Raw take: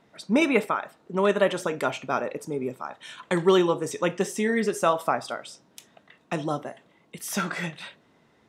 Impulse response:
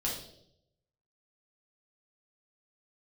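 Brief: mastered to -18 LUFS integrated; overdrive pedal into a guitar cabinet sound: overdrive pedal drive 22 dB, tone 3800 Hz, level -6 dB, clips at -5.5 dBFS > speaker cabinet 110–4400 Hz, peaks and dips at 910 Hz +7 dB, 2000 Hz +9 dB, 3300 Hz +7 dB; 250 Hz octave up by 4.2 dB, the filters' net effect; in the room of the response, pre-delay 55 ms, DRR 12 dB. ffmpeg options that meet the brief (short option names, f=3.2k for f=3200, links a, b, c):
-filter_complex "[0:a]equalizer=f=250:t=o:g=6,asplit=2[a][b];[1:a]atrim=start_sample=2205,adelay=55[c];[b][c]afir=irnorm=-1:irlink=0,volume=-16.5dB[d];[a][d]amix=inputs=2:normalize=0,asplit=2[e][f];[f]highpass=f=720:p=1,volume=22dB,asoftclip=type=tanh:threshold=-5.5dB[g];[e][g]amix=inputs=2:normalize=0,lowpass=f=3.8k:p=1,volume=-6dB,highpass=110,equalizer=f=910:t=q:w=4:g=7,equalizer=f=2k:t=q:w=4:g=9,equalizer=f=3.3k:t=q:w=4:g=7,lowpass=f=4.4k:w=0.5412,lowpass=f=4.4k:w=1.3066,volume=-3dB"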